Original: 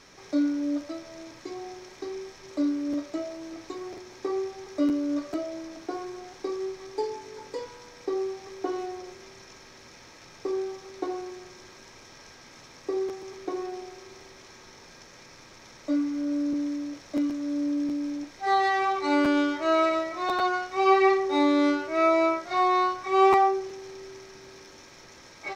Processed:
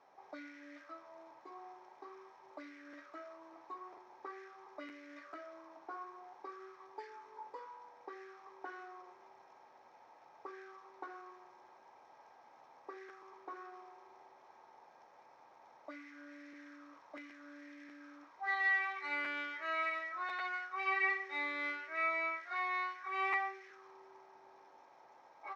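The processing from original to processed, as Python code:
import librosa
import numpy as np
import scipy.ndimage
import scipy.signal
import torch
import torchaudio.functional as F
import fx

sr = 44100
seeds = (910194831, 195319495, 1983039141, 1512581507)

y = fx.auto_wah(x, sr, base_hz=760.0, top_hz=2000.0, q=4.1, full_db=-24.0, direction='up')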